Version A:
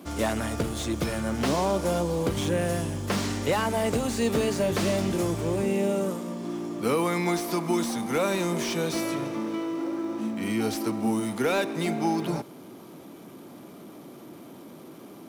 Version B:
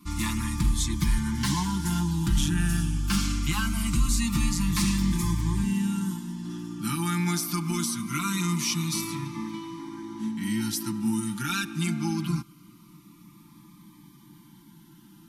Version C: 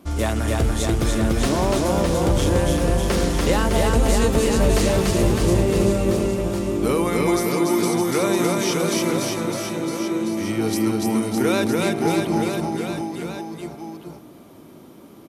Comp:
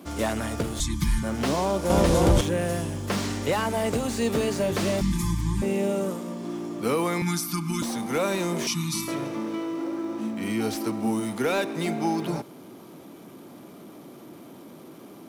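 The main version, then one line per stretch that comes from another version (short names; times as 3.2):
A
0.8–1.23 from B
1.9–2.41 from C
5.01–5.62 from B
7.22–7.82 from B
8.67–9.08 from B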